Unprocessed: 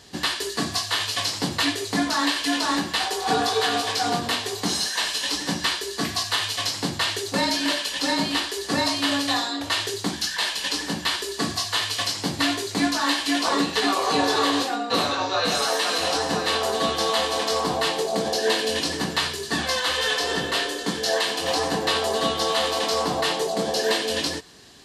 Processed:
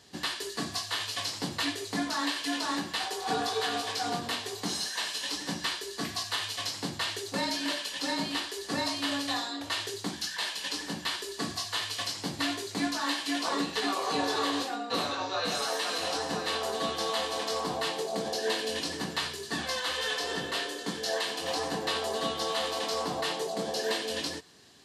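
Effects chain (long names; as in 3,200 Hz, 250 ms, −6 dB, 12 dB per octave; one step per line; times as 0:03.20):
high-pass filter 75 Hz
level −8 dB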